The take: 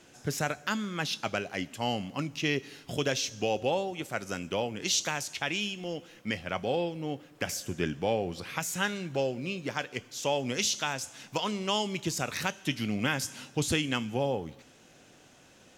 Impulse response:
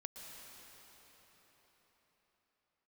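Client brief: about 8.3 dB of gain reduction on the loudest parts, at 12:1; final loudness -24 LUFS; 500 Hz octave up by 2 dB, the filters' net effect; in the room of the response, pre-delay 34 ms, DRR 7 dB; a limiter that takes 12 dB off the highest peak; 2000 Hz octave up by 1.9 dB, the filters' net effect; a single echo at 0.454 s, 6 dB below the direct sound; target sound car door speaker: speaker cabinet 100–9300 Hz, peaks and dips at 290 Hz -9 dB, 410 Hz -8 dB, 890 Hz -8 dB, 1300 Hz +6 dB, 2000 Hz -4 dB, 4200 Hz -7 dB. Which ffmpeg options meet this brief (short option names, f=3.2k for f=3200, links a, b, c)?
-filter_complex "[0:a]equalizer=f=500:t=o:g=6,equalizer=f=2k:t=o:g=3,acompressor=threshold=-28dB:ratio=12,alimiter=level_in=2dB:limit=-24dB:level=0:latency=1,volume=-2dB,aecho=1:1:454:0.501,asplit=2[a][b];[1:a]atrim=start_sample=2205,adelay=34[c];[b][c]afir=irnorm=-1:irlink=0,volume=-4dB[d];[a][d]amix=inputs=2:normalize=0,highpass=100,equalizer=f=290:t=q:w=4:g=-9,equalizer=f=410:t=q:w=4:g=-8,equalizer=f=890:t=q:w=4:g=-8,equalizer=f=1.3k:t=q:w=4:g=6,equalizer=f=2k:t=q:w=4:g=-4,equalizer=f=4.2k:t=q:w=4:g=-7,lowpass=f=9.3k:w=0.5412,lowpass=f=9.3k:w=1.3066,volume=13.5dB"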